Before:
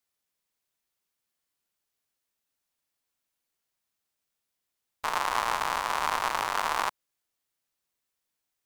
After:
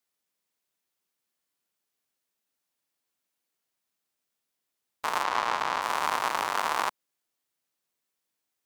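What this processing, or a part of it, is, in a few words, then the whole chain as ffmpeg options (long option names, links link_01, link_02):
filter by subtraction: -filter_complex "[0:a]asettb=1/sr,asplit=3[link_01][link_02][link_03];[link_01]atrim=end=5.234[link_04];[link_02]atrim=start=5.23:end=5.82,asetpts=PTS-STARTPTS,afade=type=in:duration=0.004:curve=qsin,afade=type=out:start_time=0.586:duration=0.004:curve=qsin,acrossover=split=6600[link_05][link_06];[link_06]acompressor=threshold=-50dB:ratio=4:attack=1:release=60[link_07];[link_05][link_07]amix=inputs=2:normalize=0[link_08];[link_03]atrim=start=5.816[link_09];[link_04][link_08]acrossfade=duration=0.004:curve1=hsin:curve2=qsin[link_10];[link_10][link_09]acrossfade=duration=0.004:curve1=qsin:curve2=hsin,asplit=2[link_11][link_12];[link_12]lowpass=240,volume=-1[link_13];[link_11][link_13]amix=inputs=2:normalize=0"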